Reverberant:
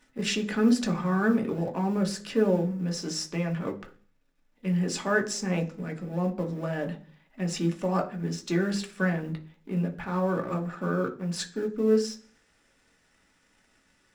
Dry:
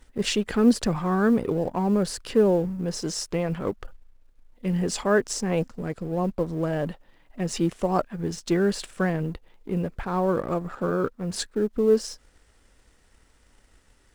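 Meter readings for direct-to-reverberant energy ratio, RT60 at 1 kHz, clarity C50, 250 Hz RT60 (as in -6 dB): 2.5 dB, 0.40 s, 15.0 dB, 0.60 s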